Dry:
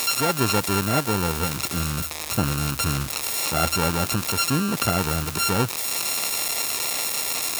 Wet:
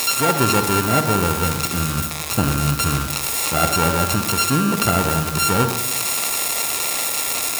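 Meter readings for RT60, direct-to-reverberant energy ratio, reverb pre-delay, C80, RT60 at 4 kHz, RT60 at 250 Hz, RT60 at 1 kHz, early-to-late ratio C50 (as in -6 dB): 1.0 s, 6.0 dB, 40 ms, 9.0 dB, 0.55 s, 1.0 s, 1.0 s, 6.5 dB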